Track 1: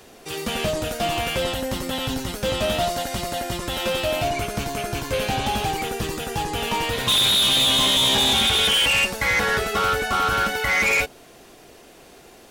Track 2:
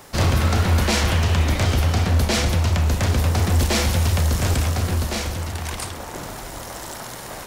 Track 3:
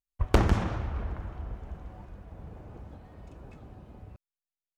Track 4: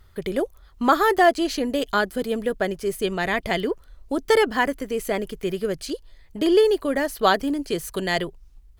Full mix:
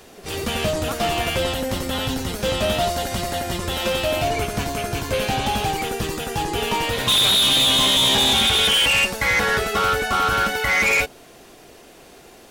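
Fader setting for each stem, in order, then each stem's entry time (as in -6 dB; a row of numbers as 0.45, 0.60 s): +1.5 dB, -17.0 dB, off, -15.5 dB; 0.00 s, 0.10 s, off, 0.00 s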